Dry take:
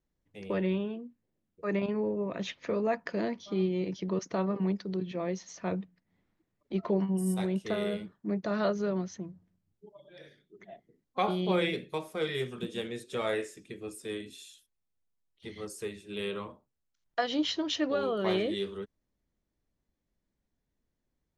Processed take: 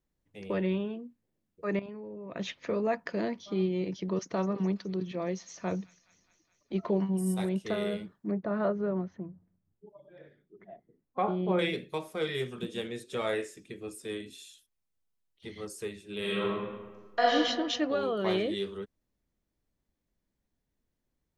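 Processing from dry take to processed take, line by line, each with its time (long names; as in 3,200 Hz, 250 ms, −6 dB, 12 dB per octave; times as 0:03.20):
0:01.79–0:02.36: output level in coarse steps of 14 dB
0:03.95–0:07.49: delay with a high-pass on its return 209 ms, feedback 68%, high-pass 2,400 Hz, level −15.5 dB
0:08.31–0:11.59: low-pass filter 1,500 Hz
0:16.19–0:17.34: thrown reverb, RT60 1.4 s, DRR −5.5 dB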